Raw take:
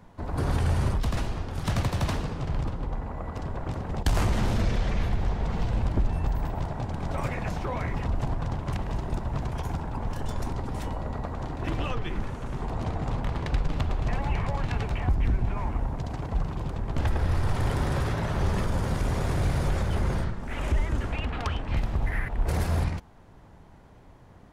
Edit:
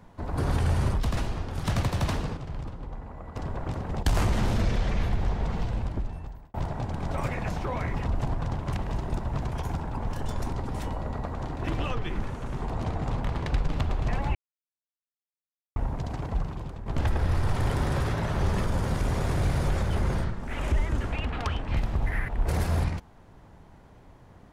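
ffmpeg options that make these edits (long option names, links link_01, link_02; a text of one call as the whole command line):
ffmpeg -i in.wav -filter_complex "[0:a]asplit=7[link_01][link_02][link_03][link_04][link_05][link_06][link_07];[link_01]atrim=end=2.372[link_08];[link_02]atrim=start=2.368:end=3.362,asetpts=PTS-STARTPTS,volume=-6.5dB[link_09];[link_03]atrim=start=3.358:end=6.54,asetpts=PTS-STARTPTS,afade=type=out:start_time=2.072:duration=1.11[link_10];[link_04]atrim=start=6.54:end=14.35,asetpts=PTS-STARTPTS,afade=type=in:duration=0.004:curve=hsin,afade=type=out:start_time=7.806:duration=0.004:curve=hsin[link_11];[link_05]atrim=start=14.35:end=15.76,asetpts=PTS-STARTPTS,volume=0[link_12];[link_06]atrim=start=15.76:end=16.86,asetpts=PTS-STARTPTS,afade=type=in:duration=0.004:curve=hsin,afade=type=out:start_time=0.52:duration=0.58:silence=0.334965[link_13];[link_07]atrim=start=16.86,asetpts=PTS-STARTPTS,afade=type=in:duration=0.004:curve=hsin:silence=0.334965[link_14];[link_08][link_09]acrossfade=duration=0.004:curve1=hsin:curve2=hsin[link_15];[link_10][link_11][link_12][link_13][link_14]concat=n=5:v=0:a=1[link_16];[link_15][link_16]acrossfade=duration=0.004:curve1=hsin:curve2=hsin" out.wav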